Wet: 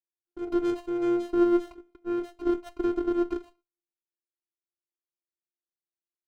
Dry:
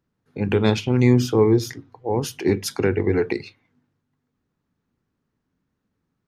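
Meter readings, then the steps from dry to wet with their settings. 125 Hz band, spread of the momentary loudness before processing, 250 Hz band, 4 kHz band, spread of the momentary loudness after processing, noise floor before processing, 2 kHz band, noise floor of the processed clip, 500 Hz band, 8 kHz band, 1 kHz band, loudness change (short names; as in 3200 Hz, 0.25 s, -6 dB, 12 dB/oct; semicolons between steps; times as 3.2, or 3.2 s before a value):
under -30 dB, 13 LU, -5.0 dB, under -15 dB, 12 LU, -77 dBFS, -15.0 dB, under -85 dBFS, -7.0 dB, under -20 dB, -7.0 dB, -7.0 dB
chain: vocoder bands 4, square 348 Hz; gate -51 dBFS, range -25 dB; running maximum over 17 samples; gain -6 dB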